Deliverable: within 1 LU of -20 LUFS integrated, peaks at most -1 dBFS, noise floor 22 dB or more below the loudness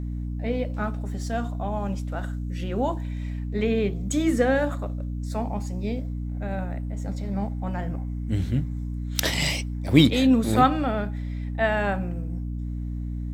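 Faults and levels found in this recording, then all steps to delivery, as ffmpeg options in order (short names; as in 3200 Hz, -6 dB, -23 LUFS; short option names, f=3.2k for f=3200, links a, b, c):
hum 60 Hz; harmonics up to 300 Hz; hum level -28 dBFS; loudness -26.0 LUFS; peak -2.0 dBFS; loudness target -20.0 LUFS
-> -af "bandreject=f=60:t=h:w=6,bandreject=f=120:t=h:w=6,bandreject=f=180:t=h:w=6,bandreject=f=240:t=h:w=6,bandreject=f=300:t=h:w=6"
-af "volume=6dB,alimiter=limit=-1dB:level=0:latency=1"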